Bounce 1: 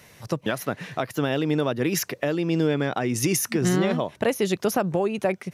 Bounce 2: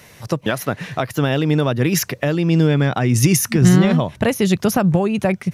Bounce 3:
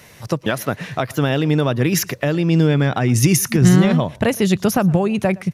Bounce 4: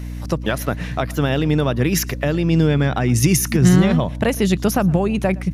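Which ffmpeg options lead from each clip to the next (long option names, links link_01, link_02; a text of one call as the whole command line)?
ffmpeg -i in.wav -af "asubboost=boost=5:cutoff=170,volume=6dB" out.wav
ffmpeg -i in.wav -af "aecho=1:1:115:0.0668" out.wav
ffmpeg -i in.wav -af "aeval=exprs='val(0)+0.0501*(sin(2*PI*60*n/s)+sin(2*PI*2*60*n/s)/2+sin(2*PI*3*60*n/s)/3+sin(2*PI*4*60*n/s)/4+sin(2*PI*5*60*n/s)/5)':channel_layout=same,volume=-1dB" out.wav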